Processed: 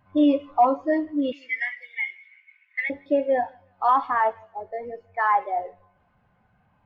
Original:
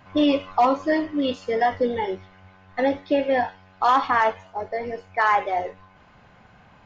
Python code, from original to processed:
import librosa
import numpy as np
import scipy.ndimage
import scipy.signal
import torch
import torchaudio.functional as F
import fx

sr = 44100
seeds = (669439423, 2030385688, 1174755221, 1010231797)

p1 = fx.law_mismatch(x, sr, coded='mu')
p2 = fx.highpass_res(p1, sr, hz=2200.0, q=7.7, at=(1.32, 2.9))
p3 = p2 + fx.echo_feedback(p2, sr, ms=161, feedback_pct=41, wet_db=-20, dry=0)
y = fx.spectral_expand(p3, sr, expansion=1.5)